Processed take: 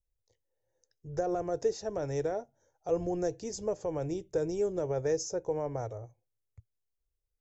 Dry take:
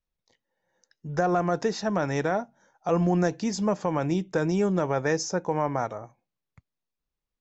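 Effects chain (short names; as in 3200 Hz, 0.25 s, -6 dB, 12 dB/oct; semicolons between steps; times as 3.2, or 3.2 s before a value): EQ curve 110 Hz 0 dB, 190 Hz -23 dB, 450 Hz -5 dB, 1100 Hz -22 dB, 4000 Hz -17 dB, 6600 Hz -8 dB; gain +4 dB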